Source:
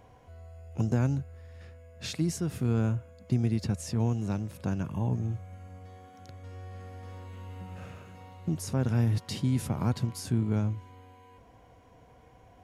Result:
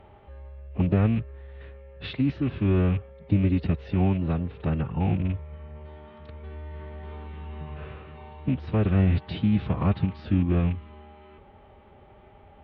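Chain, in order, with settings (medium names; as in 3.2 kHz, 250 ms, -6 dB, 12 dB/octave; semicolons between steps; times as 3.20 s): rattle on loud lows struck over -28 dBFS, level -38 dBFS; steep low-pass 3.7 kHz 48 dB/octave; formant-preserving pitch shift -3.5 st; trim +5 dB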